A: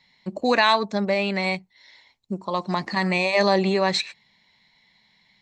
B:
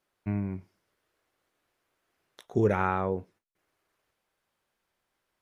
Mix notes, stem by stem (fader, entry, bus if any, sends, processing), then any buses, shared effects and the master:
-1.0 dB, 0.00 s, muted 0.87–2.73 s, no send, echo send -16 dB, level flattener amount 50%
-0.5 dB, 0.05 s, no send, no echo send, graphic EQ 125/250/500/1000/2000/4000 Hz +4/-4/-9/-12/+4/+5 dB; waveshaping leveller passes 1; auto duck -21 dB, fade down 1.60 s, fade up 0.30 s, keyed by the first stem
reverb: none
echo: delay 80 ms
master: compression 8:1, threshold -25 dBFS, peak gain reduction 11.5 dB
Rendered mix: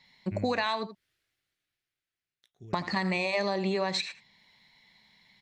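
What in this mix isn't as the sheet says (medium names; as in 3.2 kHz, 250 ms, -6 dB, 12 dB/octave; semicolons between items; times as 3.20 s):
stem A: missing level flattener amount 50%; stem B: missing waveshaping leveller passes 1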